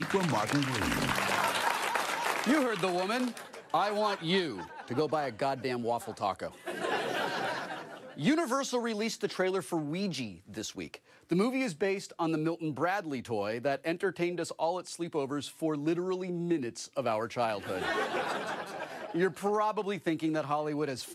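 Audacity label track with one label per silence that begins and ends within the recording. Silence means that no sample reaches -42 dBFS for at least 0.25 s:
10.960000	11.300000	silence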